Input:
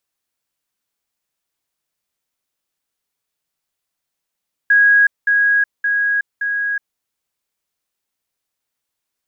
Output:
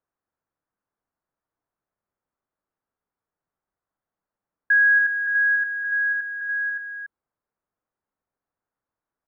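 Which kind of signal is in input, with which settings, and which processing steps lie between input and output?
level staircase 1,650 Hz −8 dBFS, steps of −3 dB, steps 4, 0.37 s 0.20 s
low-pass filter 1,500 Hz 24 dB per octave
on a send: single-tap delay 284 ms −9 dB

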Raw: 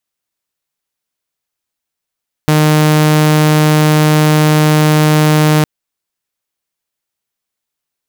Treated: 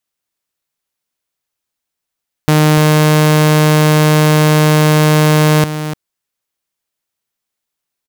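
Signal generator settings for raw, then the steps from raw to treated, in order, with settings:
tone saw 153 Hz −4.5 dBFS 3.16 s
single-tap delay 296 ms −11 dB

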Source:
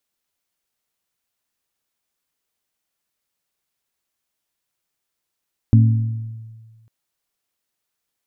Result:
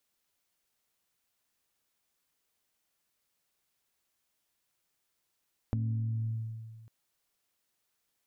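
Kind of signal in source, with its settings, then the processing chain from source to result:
struck glass bell, length 1.15 s, lowest mode 112 Hz, modes 3, decay 1.57 s, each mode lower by 7 dB, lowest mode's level −7 dB
brickwall limiter −14 dBFS
downward compressor 20 to 1, threshold −29 dBFS
soft clipping −18 dBFS

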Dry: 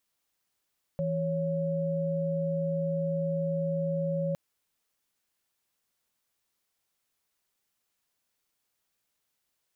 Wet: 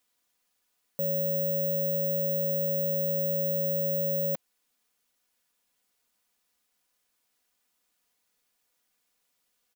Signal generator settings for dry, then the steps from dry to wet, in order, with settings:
held notes E3/C#5 sine, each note −29.5 dBFS 3.36 s
high-pass filter 190 Hz
comb filter 4.1 ms, depth 47%
bad sample-rate conversion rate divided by 2×, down none, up zero stuff

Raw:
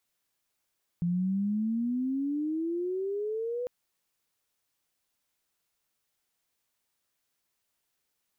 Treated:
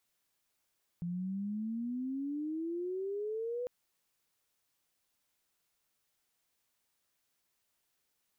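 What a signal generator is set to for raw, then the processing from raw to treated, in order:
glide logarithmic 170 Hz → 500 Hz −25 dBFS → −30 dBFS 2.65 s
brickwall limiter −34 dBFS

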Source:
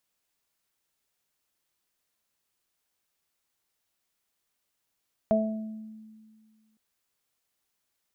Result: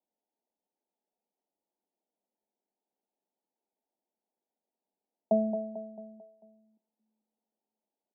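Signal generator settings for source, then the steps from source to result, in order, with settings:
harmonic partials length 1.46 s, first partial 218 Hz, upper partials −9/5 dB, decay 1.98 s, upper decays 0.55/0.62 s, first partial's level −23.5 dB
Chebyshev band-pass filter 190–910 Hz, order 5
on a send: repeating echo 222 ms, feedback 48%, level −8.5 dB

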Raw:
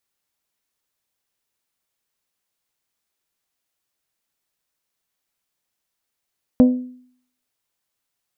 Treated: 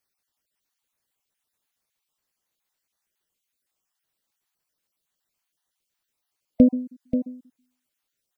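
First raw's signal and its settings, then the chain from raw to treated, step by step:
struck glass bell, lowest mode 251 Hz, modes 5, decay 0.59 s, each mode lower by 9 dB, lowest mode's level −6 dB
time-frequency cells dropped at random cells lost 37%
on a send: single-tap delay 534 ms −9.5 dB

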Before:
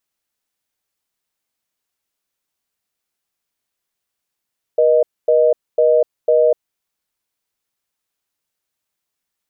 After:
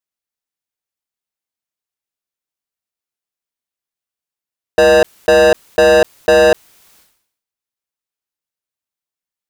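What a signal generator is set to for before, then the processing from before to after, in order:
call progress tone reorder tone, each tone −12.5 dBFS 1.96 s
leveller curve on the samples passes 5
level that may fall only so fast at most 86 dB per second

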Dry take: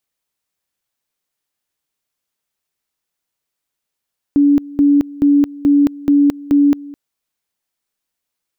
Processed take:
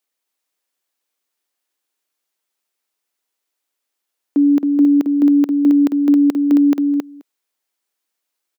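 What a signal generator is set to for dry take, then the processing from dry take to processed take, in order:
tone at two levels in turn 286 Hz −7.5 dBFS, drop 21 dB, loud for 0.22 s, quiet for 0.21 s, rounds 6
high-pass filter 250 Hz 24 dB per octave
single-tap delay 270 ms −4.5 dB

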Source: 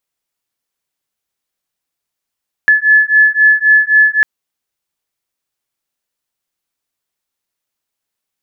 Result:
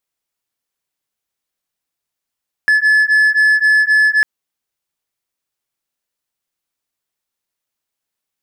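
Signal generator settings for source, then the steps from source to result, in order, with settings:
two tones that beat 1,720 Hz, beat 3.8 Hz, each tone −9.5 dBFS 1.55 s
brickwall limiter −8.5 dBFS
leveller curve on the samples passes 1

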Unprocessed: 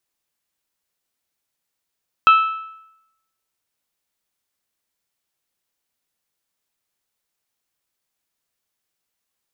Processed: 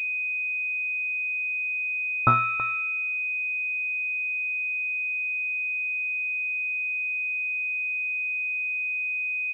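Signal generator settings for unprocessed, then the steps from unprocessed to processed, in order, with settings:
struck metal bell, lowest mode 1,310 Hz, modes 4, decay 0.84 s, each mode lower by 9 dB, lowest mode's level −6 dB
on a send: single-tap delay 328 ms −10.5 dB
on the sum: switching amplifier with a slow clock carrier 2,500 Hz

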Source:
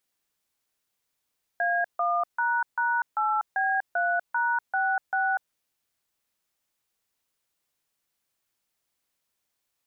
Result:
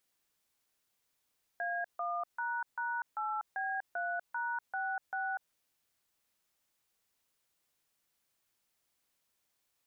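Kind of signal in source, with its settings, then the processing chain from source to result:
touch tones "A1##8B3#66", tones 244 ms, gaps 148 ms, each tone −25 dBFS
brickwall limiter −29.5 dBFS

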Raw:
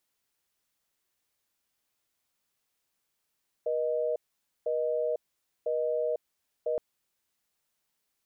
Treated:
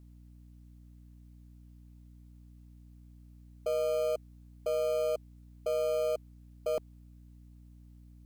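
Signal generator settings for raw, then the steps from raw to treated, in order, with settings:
call progress tone busy tone, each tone −29 dBFS
parametric band 470 Hz −4.5 dB 0.38 octaves
in parallel at −9.5 dB: decimation without filtering 24×
on the sum: mains hum 60 Hz, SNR 17 dB

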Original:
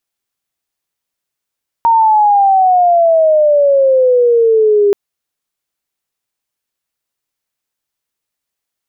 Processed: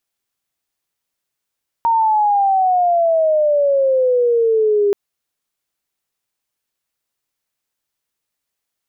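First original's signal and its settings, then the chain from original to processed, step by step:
glide logarithmic 930 Hz → 400 Hz −6 dBFS → −6.5 dBFS 3.08 s
brickwall limiter −11.5 dBFS

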